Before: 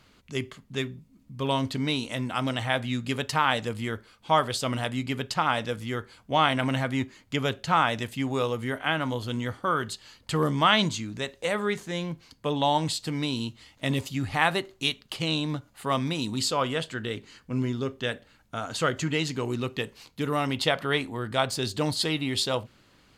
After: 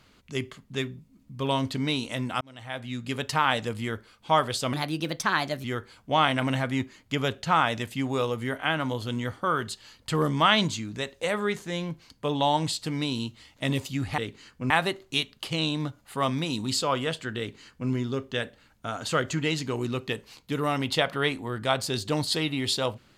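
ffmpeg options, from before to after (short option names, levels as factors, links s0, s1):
-filter_complex "[0:a]asplit=6[s0][s1][s2][s3][s4][s5];[s0]atrim=end=2.41,asetpts=PTS-STARTPTS,afade=t=out:st=2.406:d=0.004:c=hsin[s6];[s1]atrim=start=2.41:end=4.734,asetpts=PTS-STARTPTS,afade=t=in:d=0.91[s7];[s2]atrim=start=4.73:end=5.85,asetpts=PTS-STARTPTS,asetrate=54243,aresample=44100,atrim=end_sample=40156,asetpts=PTS-STARTPTS[s8];[s3]atrim=start=5.846:end=14.392[s9];[s4]atrim=start=17.068:end=17.592[s10];[s5]atrim=start=14.388[s11];[s6][s7]concat=n=2:v=0:a=1[s12];[s12][s8]acrossfade=d=0.004:c1=hsin:c2=hsin[s13];[s13][s9]acrossfade=d=0.004:c1=hsin:c2=hsin[s14];[s14][s10]acrossfade=d=0.004:c1=hsin:c2=hsin[s15];[s15][s11]acrossfade=d=0.004:c1=hsin:c2=hsin"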